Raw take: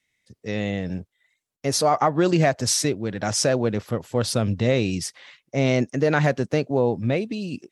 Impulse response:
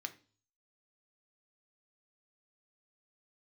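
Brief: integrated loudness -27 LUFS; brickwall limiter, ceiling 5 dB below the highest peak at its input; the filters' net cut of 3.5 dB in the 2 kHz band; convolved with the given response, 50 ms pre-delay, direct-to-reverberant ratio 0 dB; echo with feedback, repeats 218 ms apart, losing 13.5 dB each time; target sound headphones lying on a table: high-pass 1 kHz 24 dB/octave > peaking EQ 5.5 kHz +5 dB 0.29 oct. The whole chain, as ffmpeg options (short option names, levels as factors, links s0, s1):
-filter_complex "[0:a]equalizer=f=2000:t=o:g=-4.5,alimiter=limit=0.251:level=0:latency=1,aecho=1:1:218|436:0.211|0.0444,asplit=2[s0][s1];[1:a]atrim=start_sample=2205,adelay=50[s2];[s1][s2]afir=irnorm=-1:irlink=0,volume=1.19[s3];[s0][s3]amix=inputs=2:normalize=0,highpass=f=1000:w=0.5412,highpass=f=1000:w=1.3066,equalizer=f=5500:t=o:w=0.29:g=5,volume=0.794"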